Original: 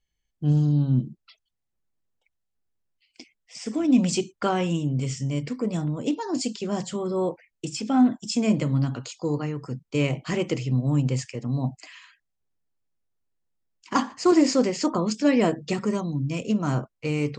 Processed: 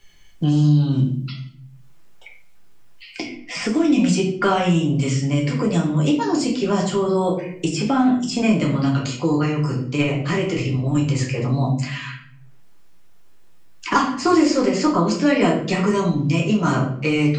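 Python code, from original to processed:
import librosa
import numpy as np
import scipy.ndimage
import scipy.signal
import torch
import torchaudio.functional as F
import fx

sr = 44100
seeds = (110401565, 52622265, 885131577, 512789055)

y = fx.peak_eq(x, sr, hz=1900.0, db=5.0, octaves=2.4)
y = fx.level_steps(y, sr, step_db=10, at=(9.83, 11.15))
y = fx.room_shoebox(y, sr, seeds[0], volume_m3=51.0, walls='mixed', distance_m=0.87)
y = fx.band_squash(y, sr, depth_pct=70)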